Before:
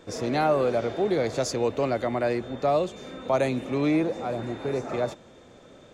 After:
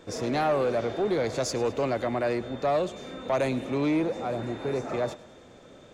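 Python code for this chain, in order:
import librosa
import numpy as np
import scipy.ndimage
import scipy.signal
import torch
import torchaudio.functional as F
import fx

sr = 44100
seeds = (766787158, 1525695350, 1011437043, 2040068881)

y = 10.0 ** (-18.5 / 20.0) * np.tanh(x / 10.0 ** (-18.5 / 20.0))
y = fx.echo_thinned(y, sr, ms=105, feedback_pct=57, hz=420.0, wet_db=-19)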